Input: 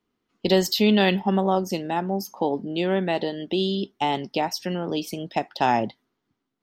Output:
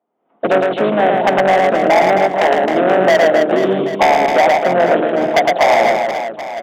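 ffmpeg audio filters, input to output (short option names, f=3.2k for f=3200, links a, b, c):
-filter_complex "[0:a]asplit=4[a][b][c][d];[b]asetrate=29433,aresample=44100,atempo=1.49831,volume=-15dB[e];[c]asetrate=33038,aresample=44100,atempo=1.33484,volume=-6dB[f];[d]asetrate=55563,aresample=44100,atempo=0.793701,volume=-14dB[g];[a][e][f][g]amix=inputs=4:normalize=0,acompressor=threshold=-23dB:ratio=6,lowpass=f=680:t=q:w=4.9,aresample=8000,asoftclip=type=tanh:threshold=-18dB,aresample=44100,highpass=180,dynaudnorm=f=150:g=3:m=14dB,aderivative,bandreject=f=50:t=h:w=6,bandreject=f=100:t=h:w=6,bandreject=f=150:t=h:w=6,bandreject=f=200:t=h:w=6,bandreject=f=250:t=h:w=6,bandreject=f=300:t=h:w=6,bandreject=f=350:t=h:w=6,bandreject=f=400:t=h:w=6,bandreject=f=450:t=h:w=6,volume=24dB,asoftclip=hard,volume=-24dB,lowshelf=f=280:g=9.5,aecho=1:1:110|264|479.6|781.4|1204:0.631|0.398|0.251|0.158|0.1,alimiter=level_in=21dB:limit=-1dB:release=50:level=0:latency=1,volume=-1dB"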